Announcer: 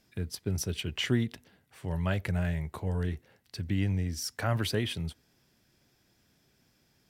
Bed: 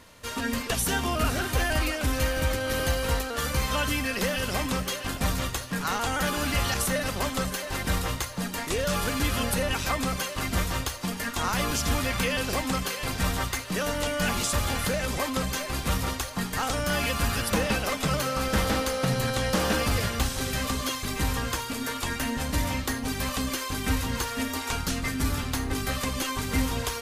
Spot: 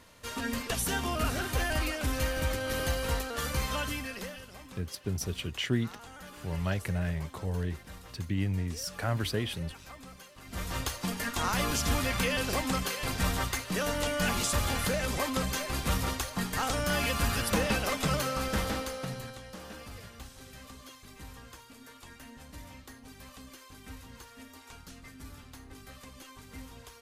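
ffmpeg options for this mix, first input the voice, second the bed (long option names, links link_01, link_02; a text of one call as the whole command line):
ffmpeg -i stem1.wav -i stem2.wav -filter_complex "[0:a]adelay=4600,volume=-1.5dB[link_01];[1:a]volume=13.5dB,afade=type=out:start_time=3.62:duration=0.85:silence=0.158489,afade=type=in:start_time=10.45:duration=0.44:silence=0.125893,afade=type=out:start_time=18.11:duration=1.31:silence=0.133352[link_02];[link_01][link_02]amix=inputs=2:normalize=0" out.wav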